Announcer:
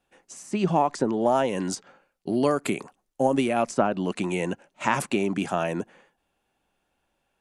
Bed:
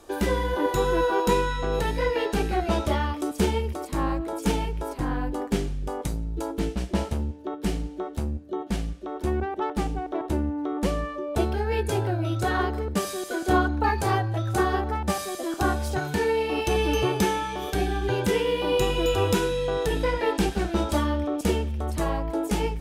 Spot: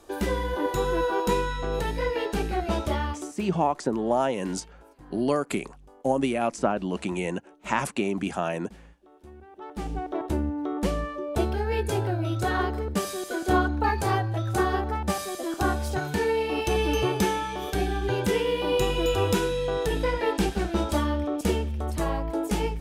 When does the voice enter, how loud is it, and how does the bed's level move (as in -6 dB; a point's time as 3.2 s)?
2.85 s, -2.0 dB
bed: 3.14 s -2.5 dB
3.48 s -21.5 dB
9.42 s -21.5 dB
9.96 s -1 dB